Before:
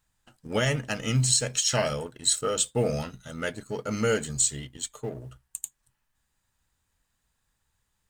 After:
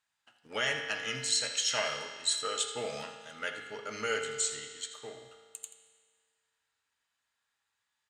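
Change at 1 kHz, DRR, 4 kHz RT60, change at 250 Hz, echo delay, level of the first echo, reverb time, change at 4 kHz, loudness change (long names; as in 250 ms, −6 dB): −4.0 dB, 3.5 dB, 1.7 s, −16.5 dB, 82 ms, −13.5 dB, 1.8 s, −2.0 dB, −6.0 dB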